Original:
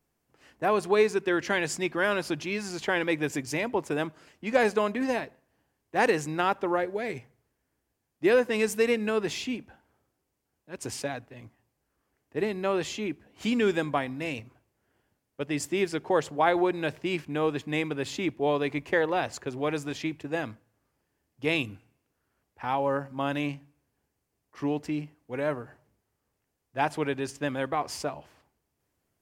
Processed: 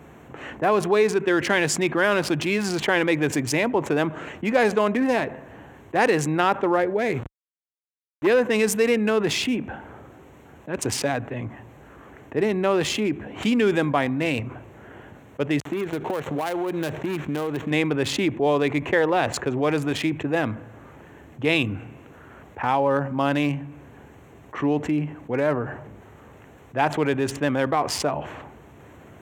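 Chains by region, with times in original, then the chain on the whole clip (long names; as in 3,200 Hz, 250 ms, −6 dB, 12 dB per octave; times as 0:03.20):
0:07.14–0:08.27: hold until the input has moved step −45.5 dBFS + saturating transformer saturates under 690 Hz
0:15.60–0:17.71: gap after every zero crossing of 0.16 ms + downward compressor 12 to 1, threshold −34 dBFS
whole clip: adaptive Wiener filter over 9 samples; high-pass filter 70 Hz; envelope flattener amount 50%; level +2 dB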